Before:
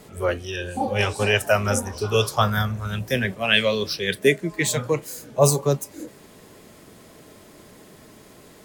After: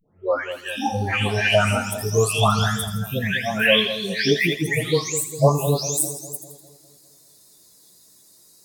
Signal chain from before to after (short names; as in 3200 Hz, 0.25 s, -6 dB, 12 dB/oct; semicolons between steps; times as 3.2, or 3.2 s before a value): spectral delay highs late, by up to 0.514 s; spectral noise reduction 21 dB; split-band echo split 820 Hz, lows 0.201 s, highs 82 ms, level -10.5 dB; gain +3.5 dB